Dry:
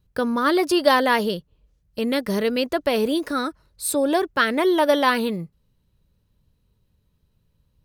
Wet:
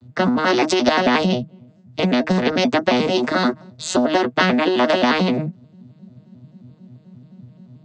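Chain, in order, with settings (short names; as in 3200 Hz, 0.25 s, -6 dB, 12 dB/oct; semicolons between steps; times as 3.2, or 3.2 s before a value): arpeggiated vocoder major triad, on B2, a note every 88 ms; notch comb 160 Hz; small resonant body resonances 230/650 Hz, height 13 dB, ringing for 45 ms; compressor, threshold -16 dBFS, peak gain reduction 8.5 dB; spectral compressor 2:1; gain +3.5 dB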